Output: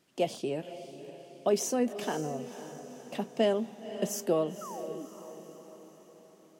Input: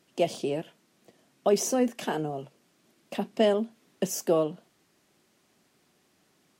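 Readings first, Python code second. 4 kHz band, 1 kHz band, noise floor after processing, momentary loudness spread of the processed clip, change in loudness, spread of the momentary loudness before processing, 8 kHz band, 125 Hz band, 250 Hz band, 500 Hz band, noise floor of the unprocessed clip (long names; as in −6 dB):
−3.0 dB, −3.0 dB, −58 dBFS, 19 LU, −4.0 dB, 12 LU, −3.0 dB, −3.0 dB, −3.0 dB, −3.0 dB, −68 dBFS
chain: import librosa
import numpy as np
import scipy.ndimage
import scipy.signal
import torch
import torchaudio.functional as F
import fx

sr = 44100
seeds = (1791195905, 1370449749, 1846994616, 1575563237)

y = fx.spec_paint(x, sr, seeds[0], shape='fall', start_s=4.61, length_s=0.45, low_hz=260.0, high_hz=1400.0, level_db=-39.0)
y = fx.wow_flutter(y, sr, seeds[1], rate_hz=2.1, depth_cents=24.0)
y = fx.echo_diffused(y, sr, ms=527, feedback_pct=50, wet_db=-12)
y = y * 10.0 ** (-3.5 / 20.0)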